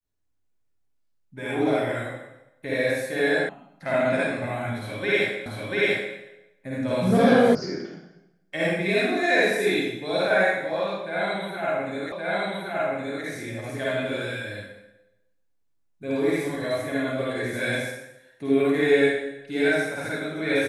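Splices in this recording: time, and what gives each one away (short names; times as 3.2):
3.49 sound cut off
5.46 repeat of the last 0.69 s
7.55 sound cut off
12.12 repeat of the last 1.12 s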